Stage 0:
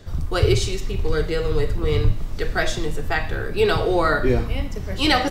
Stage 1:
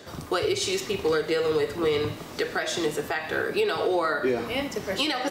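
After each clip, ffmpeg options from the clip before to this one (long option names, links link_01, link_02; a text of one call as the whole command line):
ffmpeg -i in.wav -af "highpass=290,acompressor=threshold=-23dB:ratio=6,alimiter=limit=-20dB:level=0:latency=1:release=297,volume=5dB" out.wav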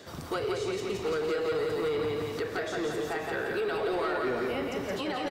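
ffmpeg -i in.wav -filter_complex "[0:a]aecho=1:1:171|342|513|684|855|1026|1197:0.668|0.341|0.174|0.0887|0.0452|0.0231|0.0118,acrossover=split=1900[link_01][link_02];[link_01]asoftclip=type=tanh:threshold=-22.5dB[link_03];[link_02]acompressor=threshold=-41dB:ratio=6[link_04];[link_03][link_04]amix=inputs=2:normalize=0,volume=-3dB" out.wav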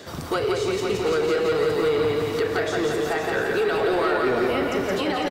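ffmpeg -i in.wav -af "aecho=1:1:502:0.376,volume=7.5dB" out.wav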